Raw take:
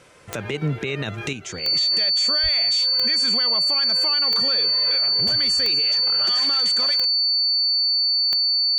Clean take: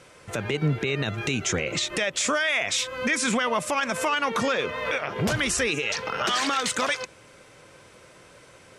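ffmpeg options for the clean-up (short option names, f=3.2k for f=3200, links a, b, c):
-filter_complex "[0:a]adeclick=t=4,bandreject=f=4.5k:w=30,asplit=3[a][b][c];[a]afade=t=out:st=2.42:d=0.02[d];[b]highpass=f=140:w=0.5412,highpass=f=140:w=1.3066,afade=t=in:st=2.42:d=0.02,afade=t=out:st=2.54:d=0.02[e];[c]afade=t=in:st=2.54:d=0.02[f];[d][e][f]amix=inputs=3:normalize=0,asetnsamples=n=441:p=0,asendcmd='1.33 volume volume 7.5dB',volume=0dB"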